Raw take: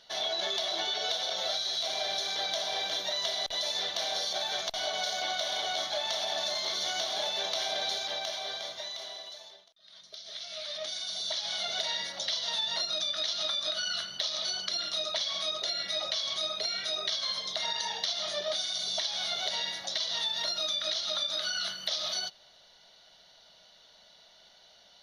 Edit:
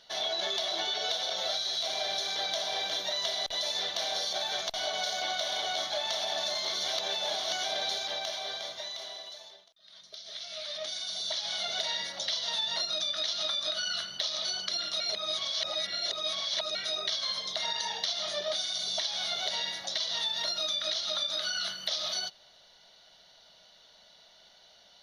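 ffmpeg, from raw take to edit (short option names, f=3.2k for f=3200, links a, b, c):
-filter_complex "[0:a]asplit=5[a][b][c][d][e];[a]atrim=end=6.882[f];[b]atrim=start=6.878:end=7.642,asetpts=PTS-STARTPTS,areverse[g];[c]atrim=start=7.638:end=15.002[h];[d]atrim=start=14.998:end=16.752,asetpts=PTS-STARTPTS,areverse[i];[e]atrim=start=16.748[j];[f][g]acrossfade=d=0.004:c1=hsin:c2=hsin[k];[k][h]acrossfade=d=0.004:c1=hsin:c2=hsin[l];[l][i]acrossfade=d=0.004:c1=hsin:c2=hsin[m];[m][j]acrossfade=d=0.004:c1=hsin:c2=hsin"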